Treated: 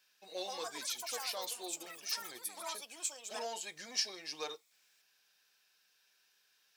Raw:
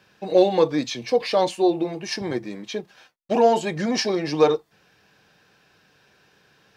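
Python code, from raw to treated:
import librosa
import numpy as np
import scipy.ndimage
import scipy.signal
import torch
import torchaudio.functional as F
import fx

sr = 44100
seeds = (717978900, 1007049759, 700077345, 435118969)

y = np.diff(x, prepend=0.0)
y = fx.echo_pitch(y, sr, ms=230, semitones=6, count=3, db_per_echo=-3.0)
y = y * 10.0 ** (-4.0 / 20.0)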